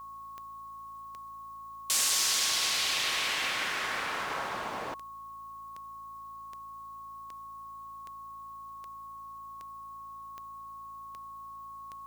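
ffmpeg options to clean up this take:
ffmpeg -i in.wav -af "adeclick=threshold=4,bandreject=frequency=55.3:width_type=h:width=4,bandreject=frequency=110.6:width_type=h:width=4,bandreject=frequency=165.9:width_type=h:width=4,bandreject=frequency=221.2:width_type=h:width=4,bandreject=frequency=276.5:width_type=h:width=4,bandreject=frequency=1100:width=30,agate=range=-21dB:threshold=-37dB" out.wav

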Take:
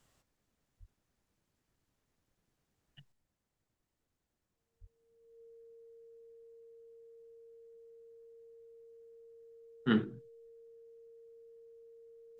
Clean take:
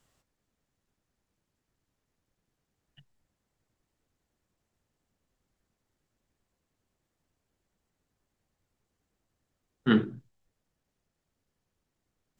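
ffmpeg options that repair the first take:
ffmpeg -i in.wav -filter_complex "[0:a]bandreject=frequency=460:width=30,asplit=3[link_01][link_02][link_03];[link_01]afade=type=out:start_time=0.79:duration=0.02[link_04];[link_02]highpass=frequency=140:width=0.5412,highpass=frequency=140:width=1.3066,afade=type=in:start_time=0.79:duration=0.02,afade=type=out:start_time=0.91:duration=0.02[link_05];[link_03]afade=type=in:start_time=0.91:duration=0.02[link_06];[link_04][link_05][link_06]amix=inputs=3:normalize=0,asplit=3[link_07][link_08][link_09];[link_07]afade=type=out:start_time=4.8:duration=0.02[link_10];[link_08]highpass=frequency=140:width=0.5412,highpass=frequency=140:width=1.3066,afade=type=in:start_time=4.8:duration=0.02,afade=type=out:start_time=4.92:duration=0.02[link_11];[link_09]afade=type=in:start_time=4.92:duration=0.02[link_12];[link_10][link_11][link_12]amix=inputs=3:normalize=0,asetnsamples=nb_out_samples=441:pad=0,asendcmd='3.12 volume volume 5.5dB',volume=0dB" out.wav

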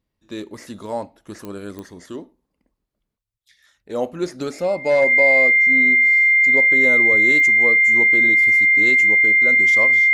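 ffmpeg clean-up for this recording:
ffmpeg -i in.wav -af "adeclick=threshold=4,bandreject=frequency=2100:width=30" out.wav

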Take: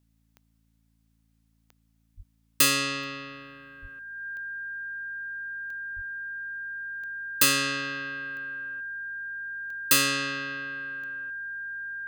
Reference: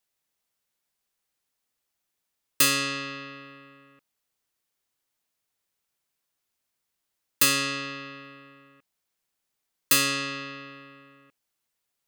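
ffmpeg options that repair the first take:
ffmpeg -i in.wav -filter_complex "[0:a]adeclick=threshold=4,bandreject=frequency=55.5:width_type=h:width=4,bandreject=frequency=111:width_type=h:width=4,bandreject=frequency=166.5:width_type=h:width=4,bandreject=frequency=222:width_type=h:width=4,bandreject=frequency=277.5:width_type=h:width=4,bandreject=frequency=1600:width=30,asplit=3[link_01][link_02][link_03];[link_01]afade=type=out:start_time=2.16:duration=0.02[link_04];[link_02]highpass=frequency=140:width=0.5412,highpass=frequency=140:width=1.3066,afade=type=in:start_time=2.16:duration=0.02,afade=type=out:start_time=2.28:duration=0.02[link_05];[link_03]afade=type=in:start_time=2.28:duration=0.02[link_06];[link_04][link_05][link_06]amix=inputs=3:normalize=0,asplit=3[link_07][link_08][link_09];[link_07]afade=type=out:start_time=3.81:duration=0.02[link_10];[link_08]highpass=frequency=140:width=0.5412,highpass=frequency=140:width=1.3066,afade=type=in:start_time=3.81:duration=0.02,afade=type=out:start_time=3.93:duration=0.02[link_11];[link_09]afade=type=in:start_time=3.93:duration=0.02[link_12];[link_10][link_11][link_12]amix=inputs=3:normalize=0,asplit=3[link_13][link_14][link_15];[link_13]afade=type=out:start_time=5.95:duration=0.02[link_16];[link_14]highpass=frequency=140:width=0.5412,highpass=frequency=140:width=1.3066,afade=type=in:start_time=5.95:duration=0.02,afade=type=out:start_time=6.07:duration=0.02[link_17];[link_15]afade=type=in:start_time=6.07:duration=0.02[link_18];[link_16][link_17][link_18]amix=inputs=3:normalize=0" out.wav

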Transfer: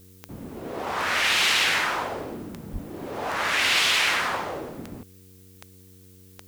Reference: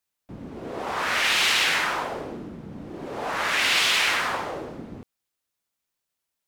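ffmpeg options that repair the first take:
ffmpeg -i in.wav -filter_complex "[0:a]adeclick=threshold=4,bandreject=frequency=93.5:width_type=h:width=4,bandreject=frequency=187:width_type=h:width=4,bandreject=frequency=280.5:width_type=h:width=4,bandreject=frequency=374:width_type=h:width=4,bandreject=frequency=467.5:width_type=h:width=4,asplit=3[link_01][link_02][link_03];[link_01]afade=type=out:start_time=2.72:duration=0.02[link_04];[link_02]highpass=frequency=140:width=0.5412,highpass=frequency=140:width=1.3066,afade=type=in:start_time=2.72:duration=0.02,afade=type=out:start_time=2.84:duration=0.02[link_05];[link_03]afade=type=in:start_time=2.84:duration=0.02[link_06];[link_04][link_05][link_06]amix=inputs=3:normalize=0,agate=range=-21dB:threshold=-43dB" out.wav

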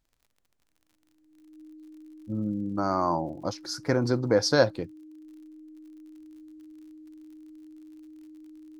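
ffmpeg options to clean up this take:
ffmpeg -i in.wav -af "adeclick=threshold=4,bandreject=frequency=310:width=30" out.wav

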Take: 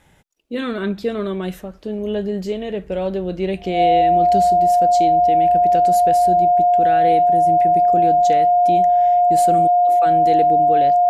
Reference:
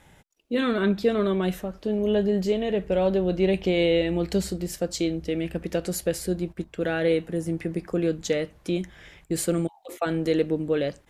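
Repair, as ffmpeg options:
ffmpeg -i in.wav -af "bandreject=frequency=710:width=30" out.wav

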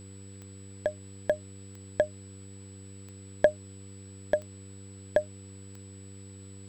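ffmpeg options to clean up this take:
ffmpeg -i in.wav -af "adeclick=threshold=4,bandreject=frequency=97.8:width_type=h:width=4,bandreject=frequency=195.6:width_type=h:width=4,bandreject=frequency=293.4:width_type=h:width=4,bandreject=frequency=391.2:width_type=h:width=4,bandreject=frequency=489:width_type=h:width=4,bandreject=frequency=7900:width=30,afftdn=noise_reduction=30:noise_floor=-47" out.wav

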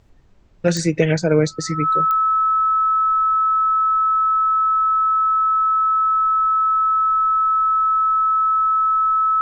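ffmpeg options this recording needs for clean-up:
ffmpeg -i in.wav -af "adeclick=threshold=4,bandreject=frequency=1300:width=30,agate=range=-21dB:threshold=-18dB" out.wav

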